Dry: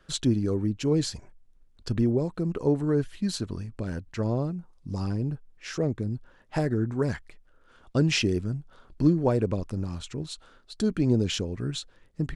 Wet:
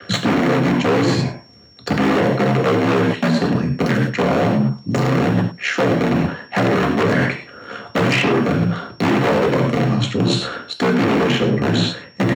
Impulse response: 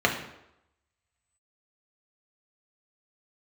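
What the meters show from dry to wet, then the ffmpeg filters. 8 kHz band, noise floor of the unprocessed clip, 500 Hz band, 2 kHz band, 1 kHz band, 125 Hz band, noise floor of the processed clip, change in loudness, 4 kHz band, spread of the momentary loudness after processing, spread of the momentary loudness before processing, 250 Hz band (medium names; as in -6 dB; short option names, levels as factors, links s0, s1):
+4.5 dB, -59 dBFS, +11.5 dB, +18.5 dB, +20.0 dB, +8.5 dB, -43 dBFS, +10.5 dB, +11.0 dB, 6 LU, 13 LU, +10.0 dB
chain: -filter_complex "[0:a]asplit=2[s0][s1];[s1]acrusher=bits=3:mix=0:aa=0.000001,volume=0.631[s2];[s0][s2]amix=inputs=2:normalize=0,aeval=exprs='val(0)*sin(2*PI*34*n/s)':c=same[s3];[1:a]atrim=start_sample=2205,afade=t=out:st=0.18:d=0.01,atrim=end_sample=8379[s4];[s3][s4]afir=irnorm=-1:irlink=0,acrossover=split=500|2200[s5][s6][s7];[s5]acompressor=threshold=0.126:ratio=4[s8];[s6]acompressor=threshold=0.141:ratio=4[s9];[s7]acompressor=threshold=0.02:ratio=4[s10];[s8][s9][s10]amix=inputs=3:normalize=0,asplit=2[s11][s12];[s12]adelay=99.13,volume=0.178,highshelf=f=4000:g=-2.23[s13];[s11][s13]amix=inputs=2:normalize=0,aeval=exprs='0.841*sin(PI/2*3.16*val(0)/0.841)':c=same,areverse,acompressor=threshold=0.141:ratio=16,areverse,aeval=exprs='val(0)+0.00282*sin(2*PI*5500*n/s)':c=same,highpass=f=110:w=0.5412,highpass=f=110:w=1.3066,adynamicequalizer=threshold=0.00631:dfrequency=6600:dqfactor=0.7:tfrequency=6600:tqfactor=0.7:attack=5:release=100:ratio=0.375:range=2:mode=cutabove:tftype=highshelf,volume=1.5"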